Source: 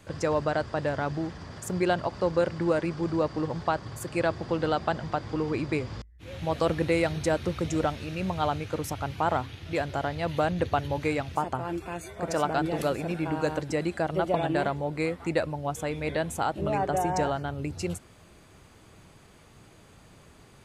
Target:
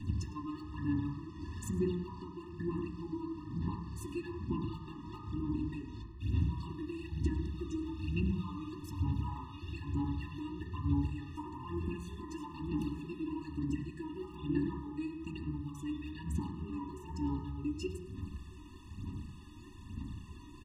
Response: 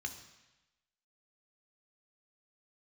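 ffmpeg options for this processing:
-filter_complex "[0:a]highshelf=f=2.3k:g=-9.5,aecho=1:1:4:0.35,acompressor=threshold=-42dB:ratio=4,aphaser=in_gain=1:out_gain=1:delay=3.2:decay=0.73:speed=1.1:type=sinusoidal,asuperstop=centerf=2100:order=12:qfactor=5.7,aecho=1:1:105:0.112,asplit=2[a][b];[1:a]atrim=start_sample=2205,lowpass=3.1k[c];[b][c]afir=irnorm=-1:irlink=0,volume=3dB[d];[a][d]amix=inputs=2:normalize=0,afftfilt=real='re*eq(mod(floor(b*sr/1024/420),2),0)':imag='im*eq(mod(floor(b*sr/1024/420),2),0)':win_size=1024:overlap=0.75,volume=1dB"

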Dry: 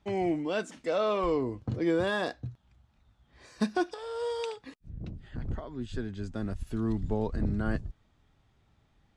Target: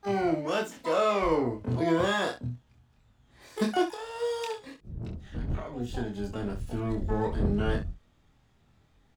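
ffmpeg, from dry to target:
-filter_complex "[0:a]asplit=2[a][b];[b]asetrate=88200,aresample=44100,atempo=0.5,volume=-8dB[c];[a][c]amix=inputs=2:normalize=0,aecho=1:1:25|66:0.668|0.316"

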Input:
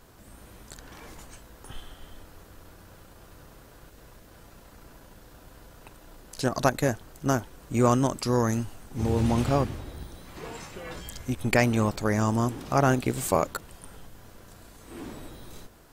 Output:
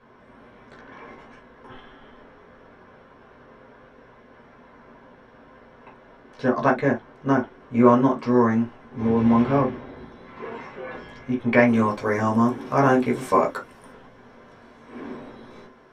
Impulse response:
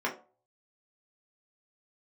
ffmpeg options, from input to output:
-filter_complex "[0:a]asetnsamples=n=441:p=0,asendcmd='11.68 lowpass f 11000;13.92 lowpass f 5100',lowpass=3.5k[a];[1:a]atrim=start_sample=2205,atrim=end_sample=3087[b];[a][b]afir=irnorm=-1:irlink=0,volume=-4dB"

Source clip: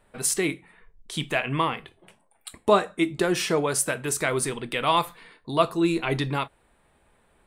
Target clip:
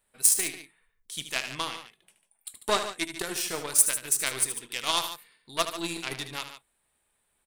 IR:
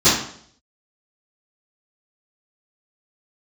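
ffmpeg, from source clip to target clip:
-af "aeval=exprs='0.531*(cos(1*acos(clip(val(0)/0.531,-1,1)))-cos(1*PI/2))+0.0422*(cos(4*acos(clip(val(0)/0.531,-1,1)))-cos(4*PI/2))+0.0473*(cos(7*acos(clip(val(0)/0.531,-1,1)))-cos(7*PI/2))':c=same,aecho=1:1:75.8|145.8:0.316|0.251,crystalizer=i=7:c=0,volume=-10.5dB"

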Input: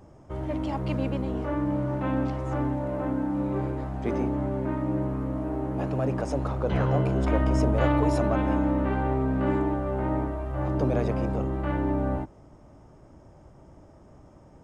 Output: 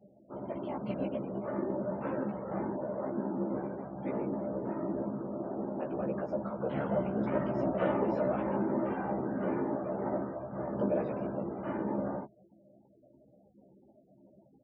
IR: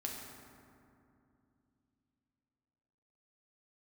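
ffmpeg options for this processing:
-filter_complex "[0:a]afftfilt=real='hypot(re,im)*cos(2*PI*random(0))':imag='hypot(re,im)*sin(2*PI*random(1))':win_size=512:overlap=0.75,afftfilt=real='re*gte(hypot(re,im),0.00355)':imag='im*gte(hypot(re,im),0.00355)':win_size=1024:overlap=0.75,highpass=170,equalizer=f=200:t=q:w=4:g=7,equalizer=f=360:t=q:w=4:g=4,equalizer=f=590:t=q:w=4:g=8,equalizer=f=900:t=q:w=4:g=3,equalizer=f=1.4k:t=q:w=4:g=3,lowpass=f=3.9k:w=0.5412,lowpass=f=3.9k:w=1.3066,asplit=2[a][b];[b]adelay=15,volume=-3dB[c];[a][c]amix=inputs=2:normalize=0,volume=-5.5dB"

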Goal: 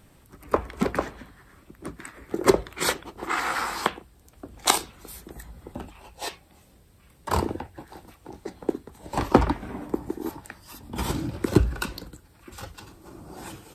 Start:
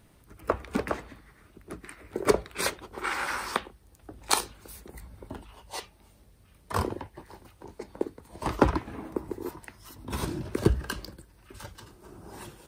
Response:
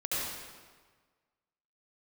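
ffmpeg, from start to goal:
-af "bandreject=f=50:t=h:w=6,bandreject=f=100:t=h:w=6,asetrate=40660,aresample=44100,volume=4dB"

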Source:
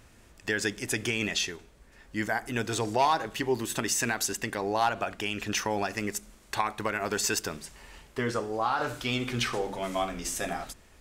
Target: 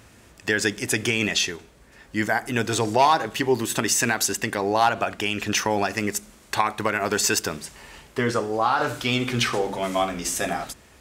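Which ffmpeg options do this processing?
-af "highpass=64,volume=6.5dB"

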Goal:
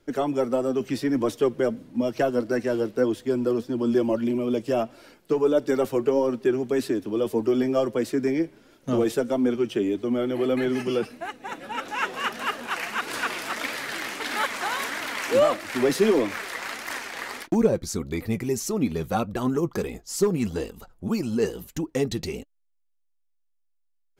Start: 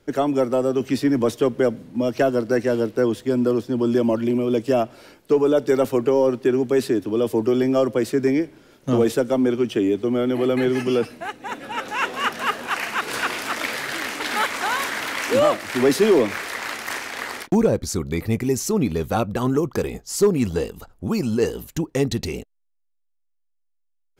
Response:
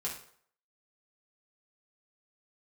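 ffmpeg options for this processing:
-af "flanger=delay=2.8:depth=3.5:regen=51:speed=1.6:shape=triangular"

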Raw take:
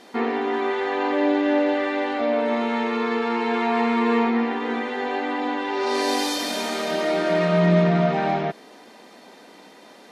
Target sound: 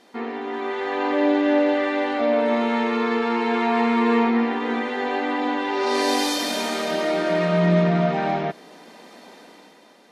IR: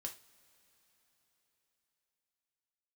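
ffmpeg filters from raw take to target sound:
-filter_complex "[0:a]dynaudnorm=f=140:g=11:m=9dB,asplit=2[a][b];[1:a]atrim=start_sample=2205,asetrate=48510,aresample=44100[c];[b][c]afir=irnorm=-1:irlink=0,volume=-11dB[d];[a][d]amix=inputs=2:normalize=0,volume=-7.5dB"

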